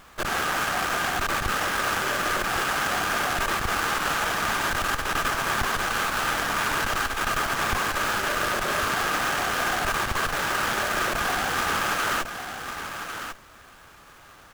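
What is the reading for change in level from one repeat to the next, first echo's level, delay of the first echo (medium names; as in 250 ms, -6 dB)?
no regular repeats, -8.5 dB, 1100 ms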